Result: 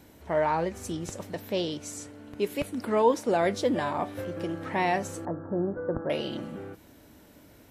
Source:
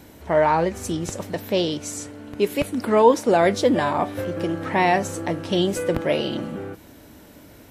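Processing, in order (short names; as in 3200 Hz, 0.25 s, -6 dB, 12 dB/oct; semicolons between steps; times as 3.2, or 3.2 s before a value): 5.25–6.1 steep low-pass 1600 Hz 72 dB/oct; gain -7.5 dB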